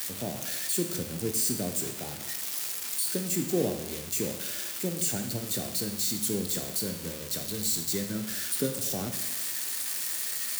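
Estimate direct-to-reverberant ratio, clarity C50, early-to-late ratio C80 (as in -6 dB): 5.0 dB, 7.5 dB, 10.0 dB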